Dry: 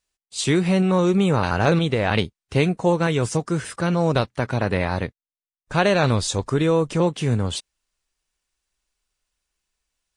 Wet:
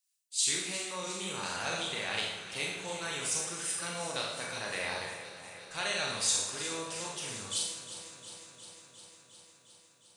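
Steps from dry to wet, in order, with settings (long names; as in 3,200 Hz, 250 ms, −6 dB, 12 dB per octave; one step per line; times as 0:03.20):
first-order pre-emphasis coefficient 0.97
four-comb reverb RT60 0.79 s, combs from 27 ms, DRR −1.5 dB
speech leveller 2 s
on a send: delay that swaps between a low-pass and a high-pass 178 ms, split 1,200 Hz, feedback 85%, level −11 dB
on the sum: level −3 dB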